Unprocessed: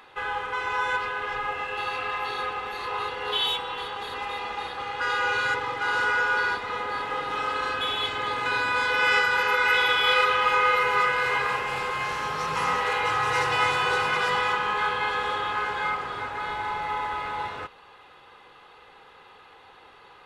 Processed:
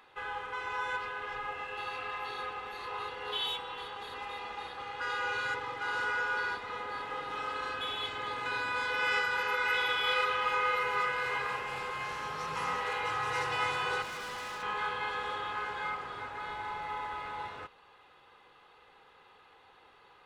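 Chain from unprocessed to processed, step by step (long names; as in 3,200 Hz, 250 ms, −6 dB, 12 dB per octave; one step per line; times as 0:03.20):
0:14.02–0:14.63: hard clipping −30 dBFS, distortion −17 dB
level −8.5 dB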